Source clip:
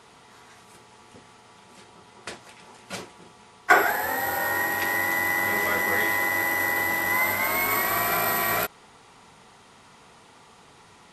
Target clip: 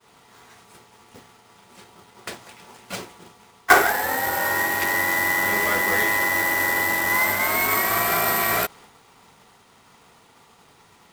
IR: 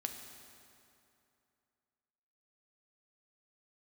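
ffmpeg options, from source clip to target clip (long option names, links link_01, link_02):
-af "agate=range=-33dB:threshold=-47dB:ratio=3:detection=peak,acrusher=bits=2:mode=log:mix=0:aa=0.000001,volume=2.5dB"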